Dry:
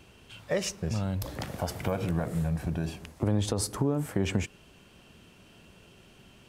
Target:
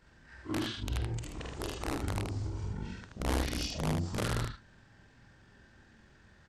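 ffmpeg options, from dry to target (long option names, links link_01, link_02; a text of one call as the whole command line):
ffmpeg -i in.wav -af "afftfilt=real='re':imag='-im':win_size=4096:overlap=0.75,aeval=exprs='(mod(16.8*val(0)+1,2)-1)/16.8':channel_layout=same,asetrate=25476,aresample=44100,atempo=1.73107,aecho=1:1:50|77:0.237|0.631,volume=-1dB" out.wav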